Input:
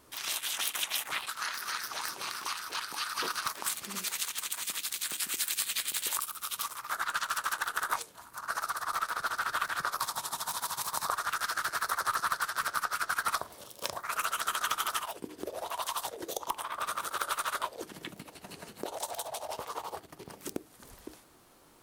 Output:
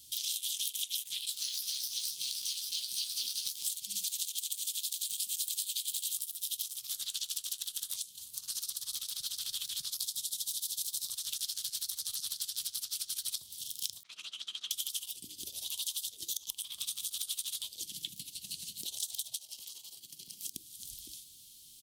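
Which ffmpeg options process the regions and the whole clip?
ffmpeg -i in.wav -filter_complex "[0:a]asettb=1/sr,asplit=3[link_01][link_02][link_03];[link_01]atrim=end=1.274[link_04];[link_02]atrim=start=1.27:end=3.64,asetpts=PTS-STARTPTS,afade=type=in:duration=0.004:curve=qsin,afade=type=out:start_time=2.366:duration=0.004:curve=qsin,acrusher=bits=4:mode=log:mix=0:aa=0.000001,asplit=2[link_05][link_06];[link_06]adelay=15,volume=-5dB[link_07];[link_05][link_07]amix=inputs=2:normalize=0,atrim=end_sample=104517[link_08];[link_03]atrim=start=3.636[link_09];[link_04][link_08]acrossfade=duration=0.004:curve1=hsin:curve2=qsin[link_10];[link_10][link_09]acrossfade=duration=0.004:curve1=qsin:curve2=hsin,asettb=1/sr,asplit=3[link_11][link_12][link_13];[link_11]atrim=end=14.034[link_14];[link_12]atrim=start=14.03:end=14.71,asetpts=PTS-STARTPTS,afade=type=in:duration=0.004:curve=qsin,afade=type=out:start_time=0.676:duration=0.004:curve=qsin,agate=range=-33dB:threshold=-35dB:ratio=3:release=100:detection=peak,highpass=280,lowpass=2100[link_15];[link_13]atrim=start=14.706[link_16];[link_14][link_15]acrossfade=duration=0.004:curve1=hsin:curve2=qsin[link_17];[link_17][link_16]acrossfade=duration=0.004:curve1=qsin:curve2=hsin,asettb=1/sr,asplit=3[link_18][link_19][link_20];[link_18]atrim=end=19.364[link_21];[link_19]atrim=start=19.36:end=20.54,asetpts=PTS-STARTPTS,afade=type=in:duration=0.004:curve=qsin,afade=type=out:start_time=1.176:duration=0.004:curve=qsin,highpass=160,bandreject=frequency=3600:width=17,acompressor=threshold=-44dB:ratio=4:attack=3.2:release=140:knee=1:detection=peak[link_22];[link_20]atrim=start=20.536[link_23];[link_21][link_22]acrossfade=duration=0.004:curve1=hsin:curve2=qsin[link_24];[link_24][link_23]acrossfade=duration=0.004:curve1=qsin:curve2=hsin,firequalizer=gain_entry='entry(130,0);entry(480,-23);entry(1400,-28);entry(3200,15)':delay=0.05:min_phase=1,acompressor=threshold=-30dB:ratio=4,volume=-4.5dB" out.wav

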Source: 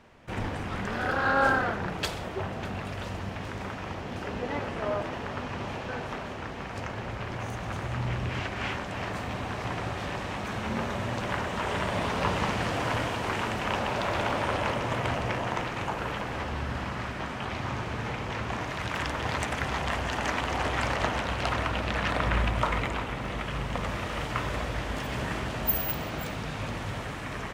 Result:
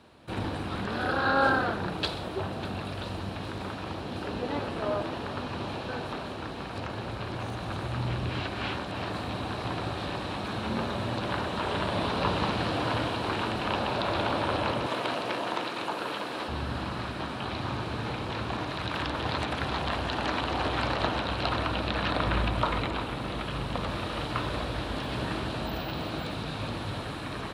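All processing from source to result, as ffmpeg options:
ffmpeg -i in.wav -filter_complex "[0:a]asettb=1/sr,asplit=3[link_01][link_02][link_03];[link_01]atrim=end=14.864[link_04];[link_02]atrim=start=14.86:end=16.48,asetpts=PTS-STARTPTS,afade=type=in:duration=0.004:curve=qsin,afade=type=out:start_time=1.616:duration=0.004:curve=qsin,highpass=260,highshelf=frequency=6200:gain=8.5,bandreject=frequency=800:width=23[link_05];[link_03]atrim=start=16.476[link_06];[link_04][link_05]acrossfade=duration=0.004:curve1=hsin:curve2=qsin[link_07];[link_07][link_06]acrossfade=duration=0.004:curve1=qsin:curve2=hsin,highpass=53,acrossover=split=5200[link_08][link_09];[link_09]acompressor=threshold=-58dB:ratio=4:attack=1:release=60[link_10];[link_08][link_10]amix=inputs=2:normalize=0,equalizer=frequency=315:width_type=o:width=0.33:gain=5,equalizer=frequency=2000:width_type=o:width=0.33:gain=-7,equalizer=frequency=4000:width_type=o:width=0.33:gain=10,equalizer=frequency=6300:width_type=o:width=0.33:gain=-5,equalizer=frequency=10000:width_type=o:width=0.33:gain=9" out.wav

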